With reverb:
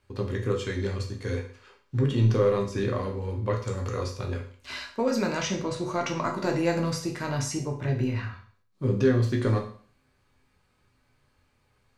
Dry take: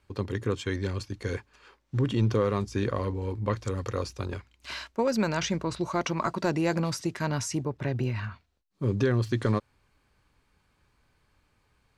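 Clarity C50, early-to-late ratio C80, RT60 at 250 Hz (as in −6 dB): 8.5 dB, 12.5 dB, 0.50 s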